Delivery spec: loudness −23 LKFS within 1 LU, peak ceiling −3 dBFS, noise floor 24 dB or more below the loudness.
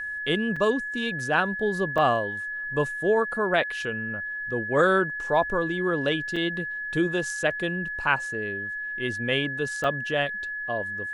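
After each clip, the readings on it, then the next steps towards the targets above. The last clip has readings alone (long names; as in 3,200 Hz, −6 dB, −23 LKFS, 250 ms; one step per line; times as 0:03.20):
number of dropouts 4; longest dropout 4.8 ms; interfering tone 1,700 Hz; level of the tone −30 dBFS; integrated loudness −26.0 LKFS; sample peak −7.0 dBFS; target loudness −23.0 LKFS
→ repair the gap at 0:00.56/0:01.98/0:06.36/0:09.84, 4.8 ms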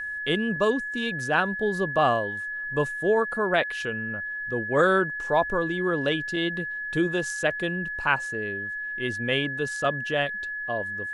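number of dropouts 0; interfering tone 1,700 Hz; level of the tone −30 dBFS
→ notch filter 1,700 Hz, Q 30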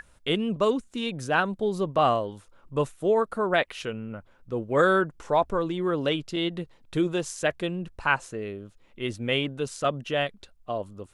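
interfering tone none found; integrated loudness −27.0 LKFS; sample peak −7.5 dBFS; target loudness −23.0 LKFS
→ level +4 dB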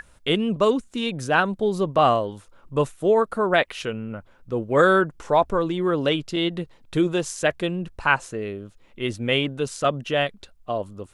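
integrated loudness −23.0 LKFS; sample peak −3.5 dBFS; background noise floor −55 dBFS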